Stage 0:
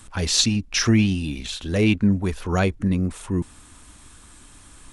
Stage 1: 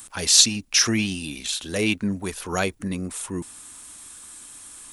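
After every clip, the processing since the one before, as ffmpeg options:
-af "aemphasis=mode=production:type=bsi,volume=0.891"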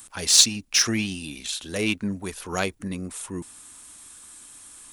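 -af "aeval=exprs='0.841*(cos(1*acos(clip(val(0)/0.841,-1,1)))-cos(1*PI/2))+0.0376*(cos(7*acos(clip(val(0)/0.841,-1,1)))-cos(7*PI/2))':c=same"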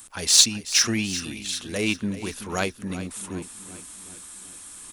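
-af "areverse,acompressor=mode=upward:threshold=0.0158:ratio=2.5,areverse,aecho=1:1:379|758|1137|1516|1895:0.2|0.108|0.0582|0.0314|0.017"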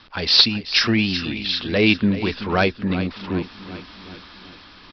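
-af "dynaudnorm=f=280:g=5:m=1.41,aresample=11025,aeval=exprs='0.794*sin(PI/2*2*val(0)/0.794)':c=same,aresample=44100,volume=0.708"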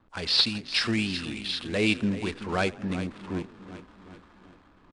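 -filter_complex "[0:a]asplit=6[s0][s1][s2][s3][s4][s5];[s1]adelay=83,afreqshift=31,volume=0.0944[s6];[s2]adelay=166,afreqshift=62,volume=0.0596[s7];[s3]adelay=249,afreqshift=93,volume=0.0376[s8];[s4]adelay=332,afreqshift=124,volume=0.0237[s9];[s5]adelay=415,afreqshift=155,volume=0.0148[s10];[s0][s6][s7][s8][s9][s10]amix=inputs=6:normalize=0,adynamicsmooth=sensitivity=7.5:basefreq=590,volume=0.398" -ar 22050 -c:a wmav2 -b:a 128k

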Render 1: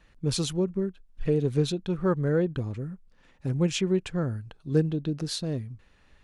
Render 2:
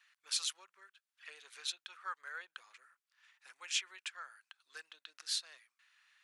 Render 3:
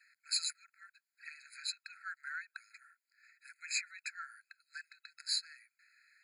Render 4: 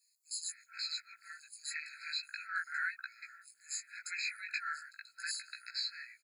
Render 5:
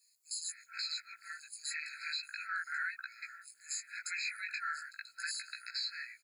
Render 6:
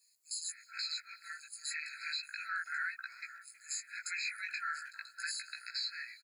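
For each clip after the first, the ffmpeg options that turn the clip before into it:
-af "highpass=f=1300:w=0.5412,highpass=f=1300:w=1.3066,volume=0.75"
-af "afftfilt=real='re*eq(mod(floor(b*sr/1024/1300),2),1)':imag='im*eq(mod(floor(b*sr/1024/1300),2),1)':win_size=1024:overlap=0.75,volume=1.5"
-filter_complex "[0:a]alimiter=level_in=2.51:limit=0.0631:level=0:latency=1:release=142,volume=0.398,flanger=delay=16:depth=3.6:speed=0.37,acrossover=split=1200|5200[s0][s1][s2];[s0]adelay=430[s3];[s1]adelay=480[s4];[s3][s4][s2]amix=inputs=3:normalize=0,volume=3.98"
-af "alimiter=level_in=2.66:limit=0.0631:level=0:latency=1:release=80,volume=0.376,volume=1.58"
-filter_complex "[0:a]asplit=2[s0][s1];[s1]adelay=320,highpass=300,lowpass=3400,asoftclip=type=hard:threshold=0.0133,volume=0.141[s2];[s0][s2]amix=inputs=2:normalize=0"

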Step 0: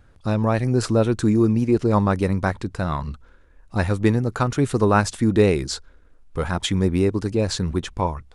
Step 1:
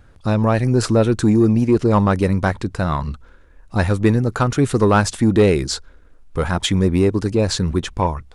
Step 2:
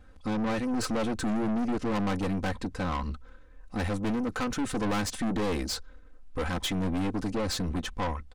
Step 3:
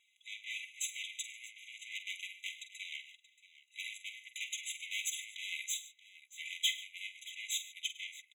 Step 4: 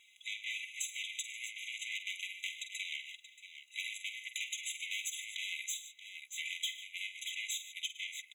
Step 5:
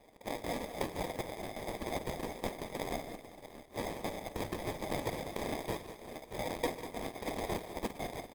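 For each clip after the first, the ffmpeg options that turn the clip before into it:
-af "acontrast=82,volume=0.75"
-af "highshelf=f=8400:g=-4.5,aecho=1:1:3.9:0.96,aeval=exprs='(tanh(10*val(0)+0.4)-tanh(0.4))/10':c=same,volume=0.473"
-filter_complex "[0:a]asplit=2[s0][s1];[s1]aecho=0:1:47|104|144|629:0.282|0.112|0.106|0.133[s2];[s0][s2]amix=inputs=2:normalize=0,afftfilt=real='re*eq(mod(floor(b*sr/1024/2000),2),1)':imag='im*eq(mod(floor(b*sr/1024/2000),2),1)':win_size=1024:overlap=0.75,volume=1.26"
-af "acompressor=threshold=0.00447:ratio=5,volume=2.99"
-af "acrusher=samples=31:mix=1:aa=0.000001,aecho=1:1:196|392|588|784|980:0.266|0.125|0.0588|0.0276|0.013,volume=1.5" -ar 48000 -c:a libopus -b:a 24k

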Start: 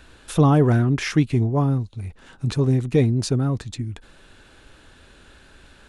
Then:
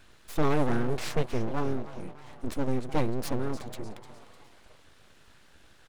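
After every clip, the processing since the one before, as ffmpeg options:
-filter_complex "[0:a]asplit=5[s0][s1][s2][s3][s4];[s1]adelay=302,afreqshift=120,volume=0.168[s5];[s2]adelay=604,afreqshift=240,volume=0.0785[s6];[s3]adelay=906,afreqshift=360,volume=0.0372[s7];[s4]adelay=1208,afreqshift=480,volume=0.0174[s8];[s0][s5][s6][s7][s8]amix=inputs=5:normalize=0,aeval=exprs='abs(val(0))':c=same,volume=0.473"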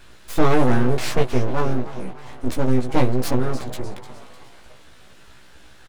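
-filter_complex "[0:a]asplit=2[s0][s1];[s1]adelay=16,volume=0.708[s2];[s0][s2]amix=inputs=2:normalize=0,volume=2.24"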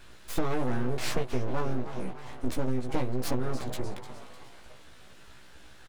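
-af "acompressor=threshold=0.141:ratio=12,volume=0.631"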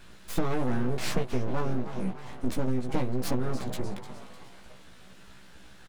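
-af "equalizer=f=190:w=3:g=8.5"

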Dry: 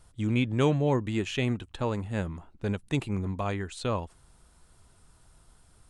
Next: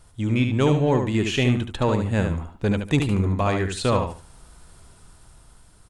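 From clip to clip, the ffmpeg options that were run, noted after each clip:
-filter_complex "[0:a]dynaudnorm=f=360:g=7:m=1.68,asplit=2[s0][s1];[s1]asoftclip=type=tanh:threshold=0.0447,volume=0.422[s2];[s0][s2]amix=inputs=2:normalize=0,aecho=1:1:73|146|219:0.501|0.115|0.0265,volume=1.26"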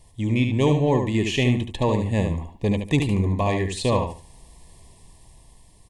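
-af "asuperstop=centerf=1400:order=12:qfactor=2.5"

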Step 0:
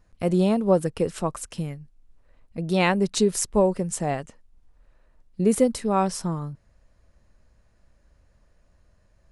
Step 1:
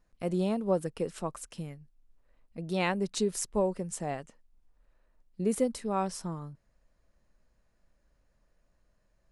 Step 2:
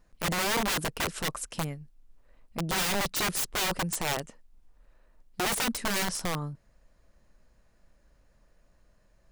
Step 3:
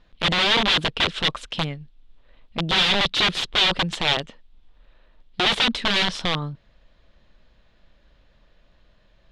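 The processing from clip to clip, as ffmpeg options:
-af "equalizer=f=79:w=1.7:g=-10.5,volume=0.398"
-af "aeval=exprs='(mod(31.6*val(0)+1,2)-1)/31.6':c=same,volume=2.24"
-af "lowpass=f=3500:t=q:w=4.1,volume=1.88"

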